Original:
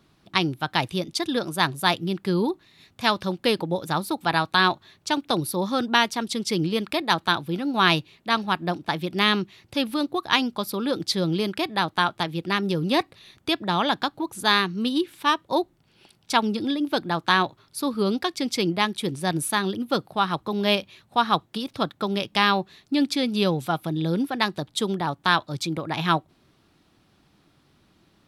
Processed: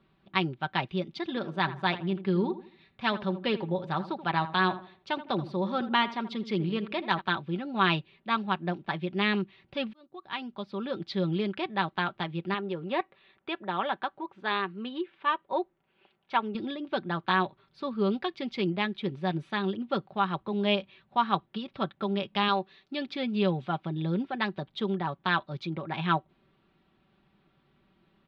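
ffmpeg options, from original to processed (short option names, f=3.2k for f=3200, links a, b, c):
-filter_complex "[0:a]asettb=1/sr,asplit=3[a][b][c];[a]atrim=end=1.084[d];[b]atrim=start=1.08:end=7.21,asetpts=PTS-STARTPTS,afade=t=in:d=0.004:c=qsin,afade=t=out:st=6.126:d=0.004:c=qsin,asplit=2[e][f];[f]adelay=80,lowpass=f=1.6k:p=1,volume=-12.5dB,asplit=2[g][h];[h]adelay=80,lowpass=f=1.6k:p=1,volume=0.36,asplit=2[i][j];[j]adelay=80,lowpass=f=1.6k:p=1,volume=0.36,asplit=2[k][l];[l]adelay=80,lowpass=f=1.6k:p=1,volume=0.36[m];[e][g][i][k][m]amix=inputs=5:normalize=0,atrim=end_sample=270333[n];[c]atrim=start=7.206[o];[d][n]acrossfade=d=0.004:c1=hsin:c2=qsin[p];[p][o]acrossfade=d=0.004:c1=qsin:c2=hsin,asettb=1/sr,asplit=3[q][r][s];[q]atrim=end=12.544[t];[r]atrim=start=12.54:end=16.55,asetpts=PTS-STARTPTS,afade=t=in:d=0.004:c=qsin,afade=t=out:st=4.006:d=0.004:c=qsin,bass=f=250:g=-12,treble=f=4k:g=-14[u];[s]atrim=start=16.546[v];[t][u]acrossfade=d=0.004:c1=hsin:c2=qsin[w];[w][v]acrossfade=d=0.004:c1=qsin:c2=hsin,asettb=1/sr,asplit=3[x][y][z];[x]atrim=end=22.484[aa];[y]atrim=start=22.48:end=23.07,asetpts=PTS-STARTPTS,afade=t=in:d=0.004:c=qsin,afade=t=out:st=0.586:d=0.004:c=qsin,bass=f=250:g=-7,treble=f=4k:g=8[ab];[z]atrim=start=23.066[ac];[aa][ab]acrossfade=d=0.004:c1=hsin:c2=qsin[ad];[ad][ac]acrossfade=d=0.004:c1=qsin:c2=hsin,asplit=2[ae][af];[ae]atrim=end=9.93,asetpts=PTS-STARTPTS,afade=t=out:st=9.926:d=0.004:c=hsin[ag];[af]atrim=start=9.93,asetpts=PTS-STARTPTS,afade=t=in:d=1.13[ah];[ag][ah]concat=n=2:v=0:a=1,lowpass=f=3.4k:w=0.5412,lowpass=f=3.4k:w=1.3066,aecho=1:1:5.2:0.52,volume=-6.5dB"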